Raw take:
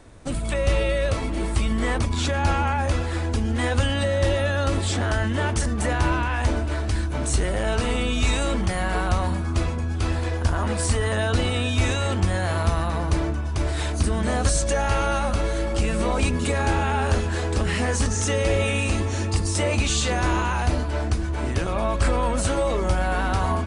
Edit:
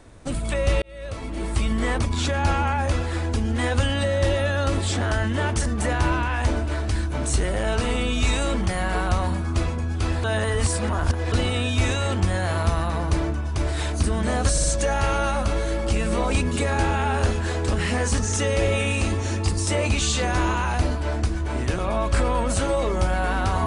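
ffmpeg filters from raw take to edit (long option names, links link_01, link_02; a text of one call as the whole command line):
ffmpeg -i in.wav -filter_complex "[0:a]asplit=6[link_01][link_02][link_03][link_04][link_05][link_06];[link_01]atrim=end=0.82,asetpts=PTS-STARTPTS,afade=type=out:start_time=0.816:duration=0.004:curve=hsin[link_07];[link_02]atrim=start=0.82:end=10.242,asetpts=PTS-STARTPTS,afade=type=in:duration=0.81[link_08];[link_03]atrim=start=10.238:end=11.322,asetpts=PTS-STARTPTS,areverse[link_09];[link_04]atrim=start=11.318:end=14.582[link_10];[link_05]atrim=start=14.518:end=14.582[link_11];[link_06]atrim=start=14.518[link_12];[link_07][link_08]concat=n=2:v=0:a=1[link_13];[link_13][link_09]acrossfade=duration=0.004:curve1=hsin:curve2=hsin[link_14];[link_14][link_10]acrossfade=duration=0.004:curve1=hsin:curve2=hsin[link_15];[link_15][link_11]acrossfade=duration=0.004:curve1=hsin:curve2=hsin[link_16];[link_16][link_12]acrossfade=duration=0.004:curve1=hsin:curve2=hsin" out.wav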